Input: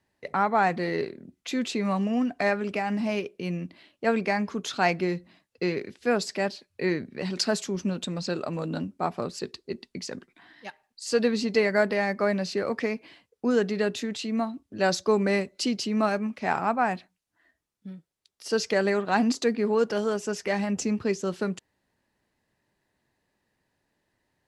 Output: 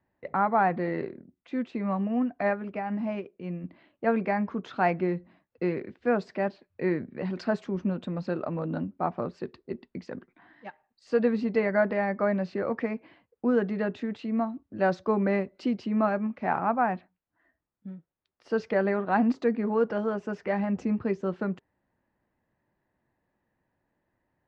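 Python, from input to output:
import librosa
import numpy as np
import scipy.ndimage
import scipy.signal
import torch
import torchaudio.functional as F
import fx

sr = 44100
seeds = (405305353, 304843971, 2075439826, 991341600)

y = fx.upward_expand(x, sr, threshold_db=-36.0, expansion=1.5, at=(1.21, 3.64))
y = scipy.signal.sosfilt(scipy.signal.butter(2, 1600.0, 'lowpass', fs=sr, output='sos'), y)
y = fx.notch(y, sr, hz=420.0, q=12.0)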